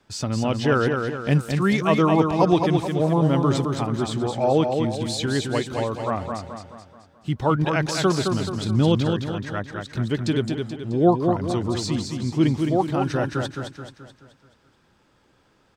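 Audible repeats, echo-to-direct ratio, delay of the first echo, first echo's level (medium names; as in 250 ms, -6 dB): 5, -4.0 dB, 215 ms, -5.0 dB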